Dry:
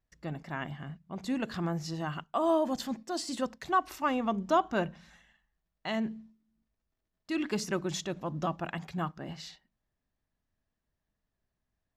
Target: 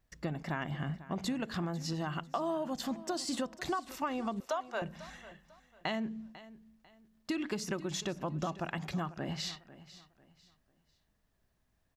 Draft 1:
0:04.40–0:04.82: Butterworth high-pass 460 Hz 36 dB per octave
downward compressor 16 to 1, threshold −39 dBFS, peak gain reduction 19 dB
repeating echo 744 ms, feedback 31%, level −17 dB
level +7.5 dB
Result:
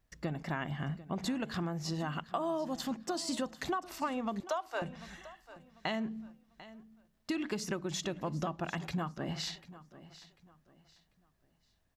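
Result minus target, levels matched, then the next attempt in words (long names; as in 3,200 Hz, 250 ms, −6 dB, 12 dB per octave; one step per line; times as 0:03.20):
echo 248 ms late
0:04.40–0:04.82: Butterworth high-pass 460 Hz 36 dB per octave
downward compressor 16 to 1, threshold −39 dBFS, peak gain reduction 19 dB
repeating echo 496 ms, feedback 31%, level −17 dB
level +7.5 dB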